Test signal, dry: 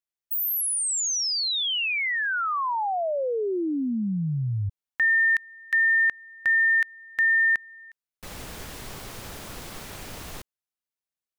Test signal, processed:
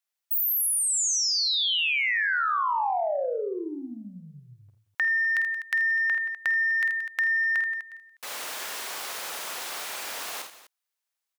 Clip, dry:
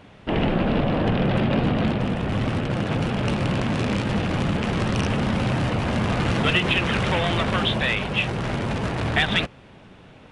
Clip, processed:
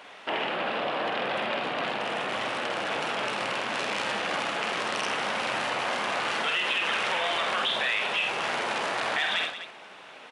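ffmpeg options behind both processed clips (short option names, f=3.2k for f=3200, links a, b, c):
-af "acontrast=43,alimiter=limit=-12dB:level=0:latency=1:release=324,highpass=710,aecho=1:1:49|81|177|250:0.473|0.299|0.141|0.158,acompressor=threshold=-23dB:ratio=6:attack=2.7:release=46:knee=6:detection=peak"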